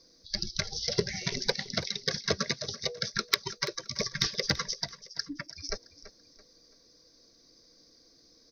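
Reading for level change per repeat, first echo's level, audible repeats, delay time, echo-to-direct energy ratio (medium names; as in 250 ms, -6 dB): -9.0 dB, -16.0 dB, 3, 334 ms, -15.5 dB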